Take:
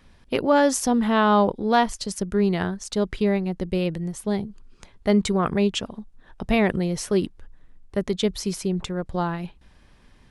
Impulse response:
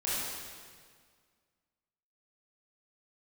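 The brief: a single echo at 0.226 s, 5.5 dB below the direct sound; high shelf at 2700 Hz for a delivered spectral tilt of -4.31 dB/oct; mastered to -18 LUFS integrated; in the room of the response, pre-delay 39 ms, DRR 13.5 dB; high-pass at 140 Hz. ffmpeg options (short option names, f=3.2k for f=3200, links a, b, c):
-filter_complex "[0:a]highpass=140,highshelf=f=2.7k:g=5,aecho=1:1:226:0.531,asplit=2[a][b];[1:a]atrim=start_sample=2205,adelay=39[c];[b][c]afir=irnorm=-1:irlink=0,volume=-21dB[d];[a][d]amix=inputs=2:normalize=0,volume=4.5dB"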